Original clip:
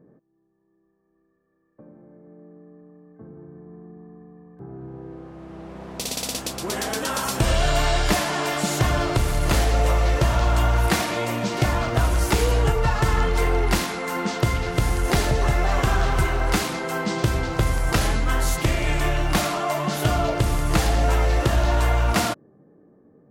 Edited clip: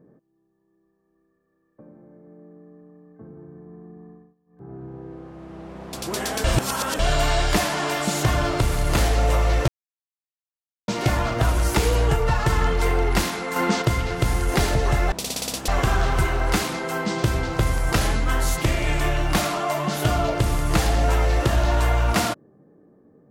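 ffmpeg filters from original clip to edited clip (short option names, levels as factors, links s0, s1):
-filter_complex "[0:a]asplit=12[s0][s1][s2][s3][s4][s5][s6][s7][s8][s9][s10][s11];[s0]atrim=end=4.35,asetpts=PTS-STARTPTS,afade=t=out:st=4.1:d=0.25:silence=0.0749894[s12];[s1]atrim=start=4.35:end=4.46,asetpts=PTS-STARTPTS,volume=0.075[s13];[s2]atrim=start=4.46:end=5.932,asetpts=PTS-STARTPTS,afade=t=in:d=0.25:silence=0.0749894[s14];[s3]atrim=start=6.488:end=7.002[s15];[s4]atrim=start=6.998:end=7.552,asetpts=PTS-STARTPTS,areverse[s16];[s5]atrim=start=7.548:end=10.24,asetpts=PTS-STARTPTS,afade=t=out:st=2.688:d=0.004:c=hsin[s17];[s6]atrim=start=10.24:end=11.44,asetpts=PTS-STARTPTS,volume=0[s18];[s7]atrim=start=11.44:end=14.122,asetpts=PTS-STARTPTS,afade=t=in:d=0.004:c=hsin[s19];[s8]atrim=start=14.118:end=14.382,asetpts=PTS-STARTPTS,volume=1.68[s20];[s9]atrim=start=14.378:end=15.682[s21];[s10]atrim=start=5.928:end=6.492[s22];[s11]atrim=start=15.678[s23];[s12][s13][s14]concat=n=3:v=0:a=1[s24];[s24][s15]acrossfade=d=0.004:c1=hsin:c2=hsin[s25];[s25][s16]acrossfade=d=0.004:c1=hsin:c2=hsin[s26];[s17][s18][s19]concat=n=3:v=0:a=1[s27];[s26][s27]acrossfade=d=0.004:c1=hsin:c2=hsin[s28];[s28][s20]acrossfade=d=0.004:c1=hsin:c2=hsin[s29];[s29][s21]acrossfade=d=0.004:c1=hsin:c2=hsin[s30];[s30][s22]acrossfade=d=0.004:c1=hsin:c2=hsin[s31];[s31][s23]acrossfade=d=0.004:c1=hsin:c2=hsin"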